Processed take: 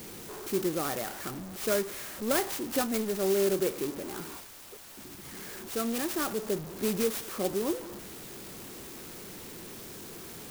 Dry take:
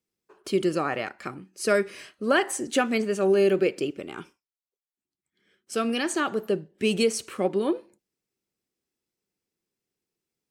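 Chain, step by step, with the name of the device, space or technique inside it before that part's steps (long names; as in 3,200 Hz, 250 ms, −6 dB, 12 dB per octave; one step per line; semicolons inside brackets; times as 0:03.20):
early CD player with a faulty converter (converter with a step at zero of −29 dBFS; converter with an unsteady clock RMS 0.1 ms)
level −7 dB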